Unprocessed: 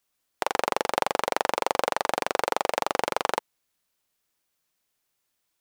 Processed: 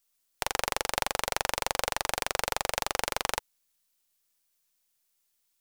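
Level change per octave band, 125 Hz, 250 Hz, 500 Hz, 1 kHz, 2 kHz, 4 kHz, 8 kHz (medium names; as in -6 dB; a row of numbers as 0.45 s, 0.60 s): +2.5 dB, -8.0 dB, -7.5 dB, -6.0 dB, -1.5 dB, +1.5 dB, +4.5 dB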